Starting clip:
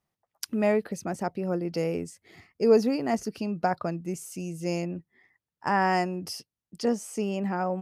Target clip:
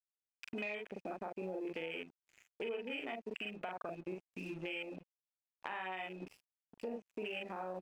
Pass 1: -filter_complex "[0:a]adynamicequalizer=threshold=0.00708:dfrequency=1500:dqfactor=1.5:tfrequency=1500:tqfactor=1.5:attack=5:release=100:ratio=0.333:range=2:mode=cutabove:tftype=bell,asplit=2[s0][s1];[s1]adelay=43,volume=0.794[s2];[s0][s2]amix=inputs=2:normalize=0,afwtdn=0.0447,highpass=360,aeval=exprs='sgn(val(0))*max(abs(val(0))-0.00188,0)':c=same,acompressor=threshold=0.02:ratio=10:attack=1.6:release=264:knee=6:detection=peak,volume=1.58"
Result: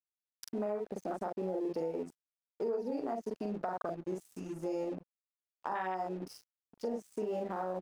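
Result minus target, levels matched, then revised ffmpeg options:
2 kHz band -11.5 dB; compression: peak gain reduction -7.5 dB
-filter_complex "[0:a]adynamicequalizer=threshold=0.00708:dfrequency=1500:dqfactor=1.5:tfrequency=1500:tqfactor=1.5:attack=5:release=100:ratio=0.333:range=2:mode=cutabove:tftype=bell,lowpass=f=2500:t=q:w=15,asplit=2[s0][s1];[s1]adelay=43,volume=0.794[s2];[s0][s2]amix=inputs=2:normalize=0,afwtdn=0.0447,highpass=360,aeval=exprs='sgn(val(0))*max(abs(val(0))-0.00188,0)':c=same,acompressor=threshold=0.00944:ratio=10:attack=1.6:release=264:knee=6:detection=peak,volume=1.58"

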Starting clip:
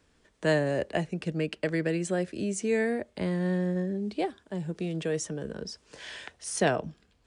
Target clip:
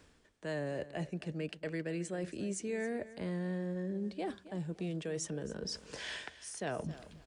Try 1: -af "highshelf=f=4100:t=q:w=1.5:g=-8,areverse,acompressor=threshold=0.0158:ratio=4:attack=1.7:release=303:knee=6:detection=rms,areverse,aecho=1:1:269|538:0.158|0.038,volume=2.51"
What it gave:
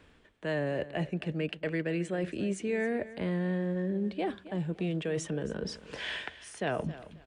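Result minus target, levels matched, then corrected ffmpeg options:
8 kHz band -8.5 dB; compression: peak gain reduction -6 dB
-af "areverse,acompressor=threshold=0.00631:ratio=4:attack=1.7:release=303:knee=6:detection=rms,areverse,aecho=1:1:269|538:0.158|0.038,volume=2.51"

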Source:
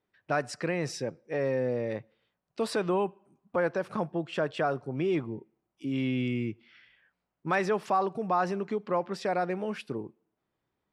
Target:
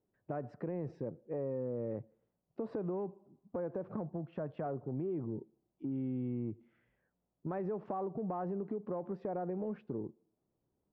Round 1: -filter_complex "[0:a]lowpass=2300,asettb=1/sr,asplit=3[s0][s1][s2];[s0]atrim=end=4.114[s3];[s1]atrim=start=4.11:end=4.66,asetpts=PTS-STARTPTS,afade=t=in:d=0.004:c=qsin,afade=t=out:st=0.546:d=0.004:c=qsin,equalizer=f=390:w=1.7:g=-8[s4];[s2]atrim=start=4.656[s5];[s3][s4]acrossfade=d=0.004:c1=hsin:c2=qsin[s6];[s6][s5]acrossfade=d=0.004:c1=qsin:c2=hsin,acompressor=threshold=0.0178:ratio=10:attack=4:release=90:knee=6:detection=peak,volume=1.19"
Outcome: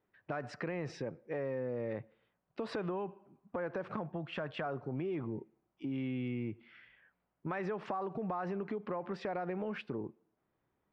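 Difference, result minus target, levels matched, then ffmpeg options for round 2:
2 kHz band +14.0 dB
-filter_complex "[0:a]lowpass=590,asettb=1/sr,asplit=3[s0][s1][s2];[s0]atrim=end=4.114[s3];[s1]atrim=start=4.11:end=4.66,asetpts=PTS-STARTPTS,afade=t=in:d=0.004:c=qsin,afade=t=out:st=0.546:d=0.004:c=qsin,equalizer=f=390:w=1.7:g=-8[s4];[s2]atrim=start=4.656[s5];[s3][s4]acrossfade=d=0.004:c1=hsin:c2=qsin[s6];[s6][s5]acrossfade=d=0.004:c1=qsin:c2=hsin,acompressor=threshold=0.0178:ratio=10:attack=4:release=90:knee=6:detection=peak,volume=1.19"

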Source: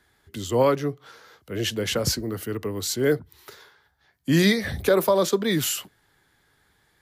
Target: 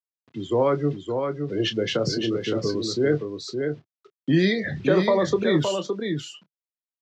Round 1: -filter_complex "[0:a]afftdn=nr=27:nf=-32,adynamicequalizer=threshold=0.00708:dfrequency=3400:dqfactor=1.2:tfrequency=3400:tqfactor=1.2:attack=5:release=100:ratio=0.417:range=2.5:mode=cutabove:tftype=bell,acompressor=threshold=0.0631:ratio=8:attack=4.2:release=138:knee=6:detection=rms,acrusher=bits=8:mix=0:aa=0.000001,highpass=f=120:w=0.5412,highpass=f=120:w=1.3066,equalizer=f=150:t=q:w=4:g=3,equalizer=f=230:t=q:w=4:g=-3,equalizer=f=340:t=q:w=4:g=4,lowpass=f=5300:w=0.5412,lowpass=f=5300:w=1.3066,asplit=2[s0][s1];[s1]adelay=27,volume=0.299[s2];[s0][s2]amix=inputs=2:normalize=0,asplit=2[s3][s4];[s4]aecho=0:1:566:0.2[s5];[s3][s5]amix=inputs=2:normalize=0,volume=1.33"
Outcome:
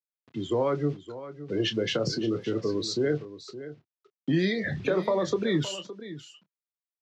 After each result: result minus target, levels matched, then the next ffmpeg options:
echo-to-direct -8.5 dB; compression: peak gain reduction +5.5 dB
-filter_complex "[0:a]afftdn=nr=27:nf=-32,adynamicequalizer=threshold=0.00708:dfrequency=3400:dqfactor=1.2:tfrequency=3400:tqfactor=1.2:attack=5:release=100:ratio=0.417:range=2.5:mode=cutabove:tftype=bell,acompressor=threshold=0.0631:ratio=8:attack=4.2:release=138:knee=6:detection=rms,acrusher=bits=8:mix=0:aa=0.000001,highpass=f=120:w=0.5412,highpass=f=120:w=1.3066,equalizer=f=150:t=q:w=4:g=3,equalizer=f=230:t=q:w=4:g=-3,equalizer=f=340:t=q:w=4:g=4,lowpass=f=5300:w=0.5412,lowpass=f=5300:w=1.3066,asplit=2[s0][s1];[s1]adelay=27,volume=0.299[s2];[s0][s2]amix=inputs=2:normalize=0,asplit=2[s3][s4];[s4]aecho=0:1:566:0.531[s5];[s3][s5]amix=inputs=2:normalize=0,volume=1.33"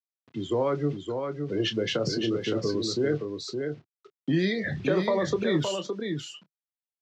compression: peak gain reduction +5.5 dB
-filter_complex "[0:a]afftdn=nr=27:nf=-32,adynamicequalizer=threshold=0.00708:dfrequency=3400:dqfactor=1.2:tfrequency=3400:tqfactor=1.2:attack=5:release=100:ratio=0.417:range=2.5:mode=cutabove:tftype=bell,acompressor=threshold=0.133:ratio=8:attack=4.2:release=138:knee=6:detection=rms,acrusher=bits=8:mix=0:aa=0.000001,highpass=f=120:w=0.5412,highpass=f=120:w=1.3066,equalizer=f=150:t=q:w=4:g=3,equalizer=f=230:t=q:w=4:g=-3,equalizer=f=340:t=q:w=4:g=4,lowpass=f=5300:w=0.5412,lowpass=f=5300:w=1.3066,asplit=2[s0][s1];[s1]adelay=27,volume=0.299[s2];[s0][s2]amix=inputs=2:normalize=0,asplit=2[s3][s4];[s4]aecho=0:1:566:0.531[s5];[s3][s5]amix=inputs=2:normalize=0,volume=1.33"

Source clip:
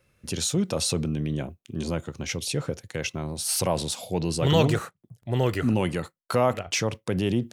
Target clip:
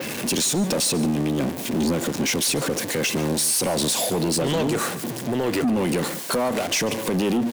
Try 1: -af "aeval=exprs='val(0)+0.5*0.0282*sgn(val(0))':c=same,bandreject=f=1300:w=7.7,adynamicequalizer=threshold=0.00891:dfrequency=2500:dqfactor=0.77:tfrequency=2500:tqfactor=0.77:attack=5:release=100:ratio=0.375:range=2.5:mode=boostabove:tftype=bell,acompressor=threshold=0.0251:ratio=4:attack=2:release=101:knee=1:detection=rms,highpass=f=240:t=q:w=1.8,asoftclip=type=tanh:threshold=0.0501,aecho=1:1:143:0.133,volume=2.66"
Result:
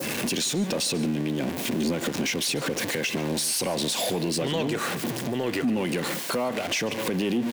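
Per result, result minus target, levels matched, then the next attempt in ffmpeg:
compression: peak gain reduction +7.5 dB; 2 kHz band +3.0 dB
-af "aeval=exprs='val(0)+0.5*0.0282*sgn(val(0))':c=same,bandreject=f=1300:w=7.7,adynamicequalizer=threshold=0.00891:dfrequency=2500:dqfactor=0.77:tfrequency=2500:tqfactor=0.77:attack=5:release=100:ratio=0.375:range=2.5:mode=boostabove:tftype=bell,acompressor=threshold=0.0708:ratio=4:attack=2:release=101:knee=1:detection=rms,highpass=f=240:t=q:w=1.8,asoftclip=type=tanh:threshold=0.0501,aecho=1:1:143:0.133,volume=2.66"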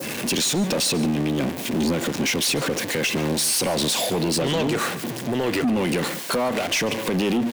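2 kHz band +2.5 dB
-af "aeval=exprs='val(0)+0.5*0.0282*sgn(val(0))':c=same,bandreject=f=1300:w=7.7,adynamicequalizer=threshold=0.00891:dfrequency=9900:dqfactor=0.77:tfrequency=9900:tqfactor=0.77:attack=5:release=100:ratio=0.375:range=2.5:mode=boostabove:tftype=bell,acompressor=threshold=0.0708:ratio=4:attack=2:release=101:knee=1:detection=rms,highpass=f=240:t=q:w=1.8,asoftclip=type=tanh:threshold=0.0501,aecho=1:1:143:0.133,volume=2.66"

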